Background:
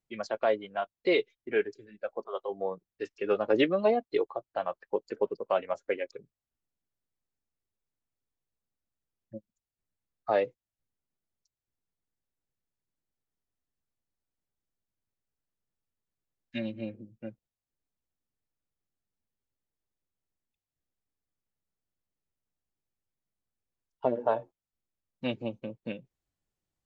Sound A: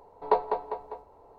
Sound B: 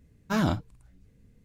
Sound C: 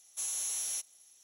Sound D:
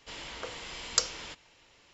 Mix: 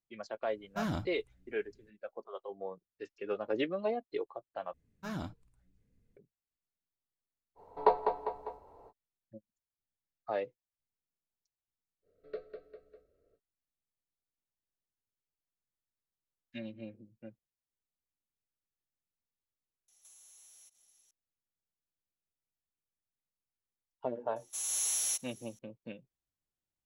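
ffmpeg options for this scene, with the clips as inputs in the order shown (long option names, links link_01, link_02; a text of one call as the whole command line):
ffmpeg -i bed.wav -i cue0.wav -i cue1.wav -i cue2.wav -filter_complex "[2:a]asplit=2[link_01][link_02];[1:a]asplit=2[link_03][link_04];[3:a]asplit=2[link_05][link_06];[0:a]volume=-8.5dB[link_07];[link_01]asoftclip=type=hard:threshold=-17dB[link_08];[link_02]flanger=delay=1.9:depth=4.8:regen=72:speed=1.5:shape=triangular[link_09];[link_04]asuperstop=centerf=890:order=8:qfactor=1.4[link_10];[link_05]acompressor=threshold=-49dB:ratio=6:attack=3.2:release=140:knee=1:detection=peak[link_11];[link_06]dynaudnorm=framelen=120:gausssize=5:maxgain=8dB[link_12];[link_07]asplit=2[link_13][link_14];[link_13]atrim=end=4.734[link_15];[link_09]atrim=end=1.44,asetpts=PTS-STARTPTS,volume=-9.5dB[link_16];[link_14]atrim=start=6.166[link_17];[link_08]atrim=end=1.44,asetpts=PTS-STARTPTS,volume=-9.5dB,afade=type=in:duration=0.004:curve=hsin,afade=type=out:start_time=1.436:duration=0.004:curve=hsin,adelay=460[link_18];[link_03]atrim=end=1.38,asetpts=PTS-STARTPTS,volume=-2dB,afade=type=in:duration=0.05,afade=type=out:start_time=1.33:duration=0.05,adelay=7550[link_19];[link_10]atrim=end=1.38,asetpts=PTS-STARTPTS,volume=-15dB,afade=type=in:duration=0.05,afade=type=out:start_time=1.33:duration=0.05,adelay=12020[link_20];[link_11]atrim=end=1.23,asetpts=PTS-STARTPTS,volume=-8dB,afade=type=in:duration=0.004:curve=hsin,afade=type=out:start_time=1.226:duration=0.004:curve=hsin,adelay=876708S[link_21];[link_12]atrim=end=1.23,asetpts=PTS-STARTPTS,volume=-5dB,afade=type=in:duration=0.004:curve=hsin,afade=type=out:start_time=1.226:duration=0.004:curve=hsin,adelay=24360[link_22];[link_15][link_16]acrossfade=duration=0.004:curve1=hsin:curve2=hsin[link_23];[link_23][link_17]acrossfade=duration=0.004:curve1=hsin:curve2=hsin[link_24];[link_24][link_18][link_19][link_20][link_21][link_22]amix=inputs=6:normalize=0" out.wav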